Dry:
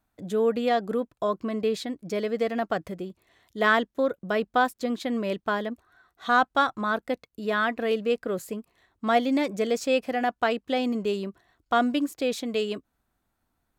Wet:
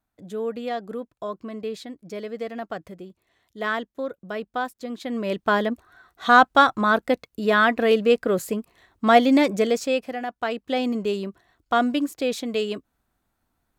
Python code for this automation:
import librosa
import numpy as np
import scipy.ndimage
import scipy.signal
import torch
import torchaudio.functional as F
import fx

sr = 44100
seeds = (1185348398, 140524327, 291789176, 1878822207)

y = fx.gain(x, sr, db=fx.line((4.87, -5.0), (5.56, 7.0), (9.51, 7.0), (10.27, -5.0), (10.77, 2.0)))